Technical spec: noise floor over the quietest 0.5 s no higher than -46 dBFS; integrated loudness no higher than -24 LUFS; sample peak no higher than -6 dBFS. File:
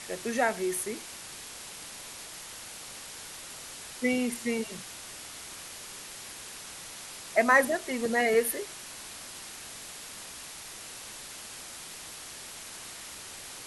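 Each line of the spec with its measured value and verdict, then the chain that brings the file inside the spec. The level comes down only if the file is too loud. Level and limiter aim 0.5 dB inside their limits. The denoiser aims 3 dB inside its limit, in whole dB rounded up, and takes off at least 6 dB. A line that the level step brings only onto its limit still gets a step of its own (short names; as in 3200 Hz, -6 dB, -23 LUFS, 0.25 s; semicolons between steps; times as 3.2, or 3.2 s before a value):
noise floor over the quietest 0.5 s -44 dBFS: fail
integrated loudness -33.0 LUFS: OK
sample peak -10.0 dBFS: OK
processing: denoiser 6 dB, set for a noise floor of -44 dBFS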